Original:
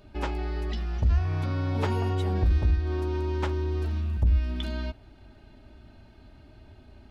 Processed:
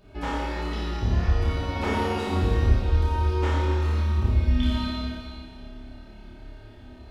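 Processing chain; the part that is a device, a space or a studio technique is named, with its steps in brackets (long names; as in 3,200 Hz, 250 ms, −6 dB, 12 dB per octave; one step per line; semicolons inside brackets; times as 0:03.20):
tunnel (flutter between parallel walls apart 4.8 metres, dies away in 0.64 s; convolution reverb RT60 2.5 s, pre-delay 13 ms, DRR −5 dB)
level −3 dB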